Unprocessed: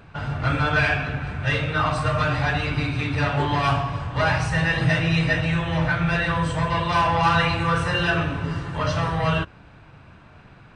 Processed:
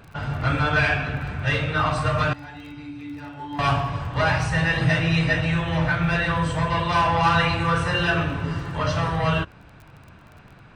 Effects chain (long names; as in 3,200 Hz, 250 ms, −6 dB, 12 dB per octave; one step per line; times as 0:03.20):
0:02.33–0:03.59: tuned comb filter 290 Hz, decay 0.49 s, harmonics odd, mix 90%
surface crackle 28 per second −38 dBFS